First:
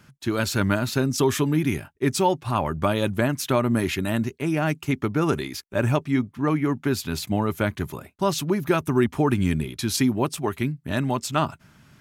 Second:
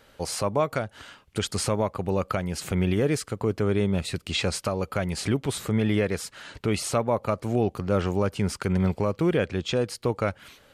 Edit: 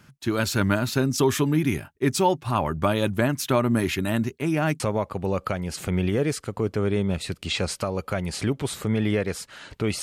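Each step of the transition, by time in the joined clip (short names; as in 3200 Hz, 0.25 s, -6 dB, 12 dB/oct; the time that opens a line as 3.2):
first
4.8 switch to second from 1.64 s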